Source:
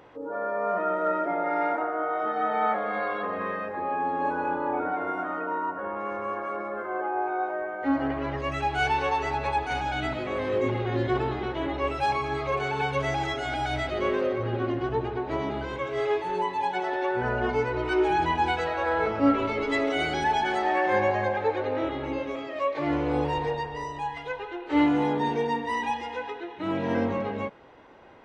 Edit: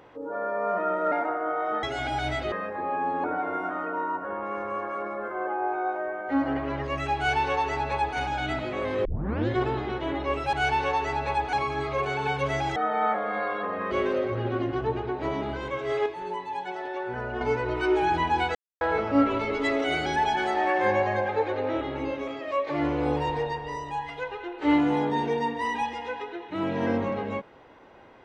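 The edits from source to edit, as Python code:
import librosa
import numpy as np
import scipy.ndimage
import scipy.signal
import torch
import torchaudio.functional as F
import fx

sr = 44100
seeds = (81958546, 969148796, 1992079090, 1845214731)

y = fx.edit(x, sr, fx.cut(start_s=1.12, length_s=0.53),
    fx.swap(start_s=2.36, length_s=1.15, other_s=13.3, other_length_s=0.69),
    fx.cut(start_s=4.23, length_s=0.55),
    fx.duplicate(start_s=8.71, length_s=1.0, to_s=12.07),
    fx.tape_start(start_s=10.59, length_s=0.43),
    fx.clip_gain(start_s=16.14, length_s=1.35, db=-5.5),
    fx.silence(start_s=18.63, length_s=0.26), tone=tone)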